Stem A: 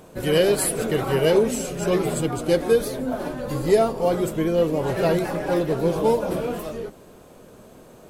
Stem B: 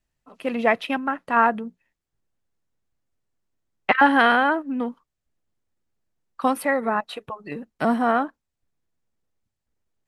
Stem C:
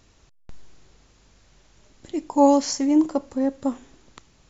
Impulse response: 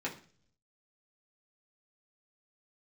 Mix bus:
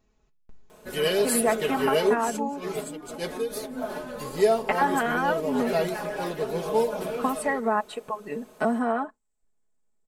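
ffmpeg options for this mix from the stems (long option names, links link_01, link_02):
-filter_complex "[0:a]lowshelf=frequency=280:gain=-11.5,adelay=700,volume=-3.5dB[link_01];[1:a]lowpass=frequency=7900:width_type=q:width=6.4,equalizer=frequency=100:width=0.57:gain=-12,adelay=800,volume=2.5dB[link_02];[2:a]volume=-11.5dB,afade=type=out:start_time=2.16:duration=0.5:silence=0.354813,asplit=3[link_03][link_04][link_05];[link_04]volume=-14.5dB[link_06];[link_05]apad=whole_len=387727[link_07];[link_01][link_07]sidechaincompress=threshold=-48dB:ratio=16:attack=35:release=115[link_08];[link_02][link_03]amix=inputs=2:normalize=0,equalizer=frequency=4800:width=0.35:gain=-13,acompressor=threshold=-22dB:ratio=6,volume=0dB[link_09];[3:a]atrim=start_sample=2205[link_10];[link_06][link_10]afir=irnorm=-1:irlink=0[link_11];[link_08][link_09][link_11]amix=inputs=3:normalize=0,aecho=1:1:4.7:0.65"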